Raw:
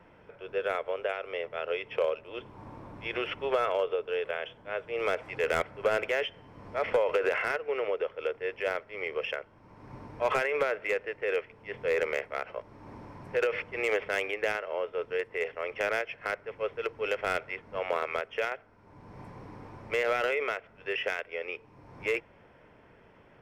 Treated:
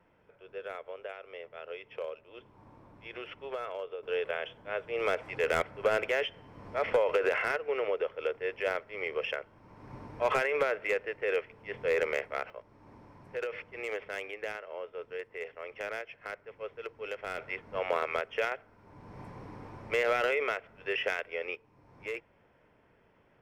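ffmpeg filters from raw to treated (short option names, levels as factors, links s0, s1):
-af "asetnsamples=n=441:p=0,asendcmd='4.03 volume volume -0.5dB;12.5 volume volume -8dB;17.38 volume volume 0dB;21.55 volume volume -8dB',volume=0.316"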